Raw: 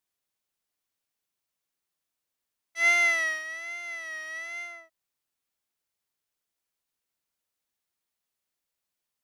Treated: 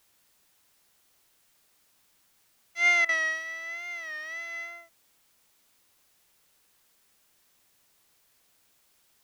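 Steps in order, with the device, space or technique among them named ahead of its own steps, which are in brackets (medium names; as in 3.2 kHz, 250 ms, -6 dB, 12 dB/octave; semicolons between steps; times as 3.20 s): worn cassette (low-pass 6.3 kHz; wow and flutter; level dips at 3.05 s, 38 ms -14 dB; white noise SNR 31 dB)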